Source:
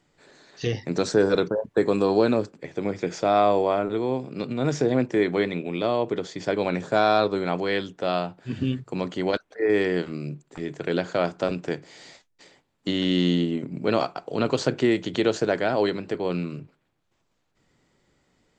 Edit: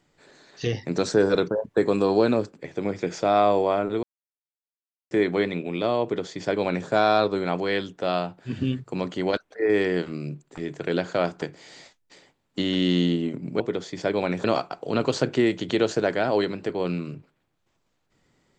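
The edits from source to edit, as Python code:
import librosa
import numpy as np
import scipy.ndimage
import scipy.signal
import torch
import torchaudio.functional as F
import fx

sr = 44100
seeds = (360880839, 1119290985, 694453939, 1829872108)

y = fx.edit(x, sr, fx.silence(start_s=4.03, length_s=1.08),
    fx.duplicate(start_s=6.03, length_s=0.84, to_s=13.89),
    fx.cut(start_s=11.42, length_s=0.29), tone=tone)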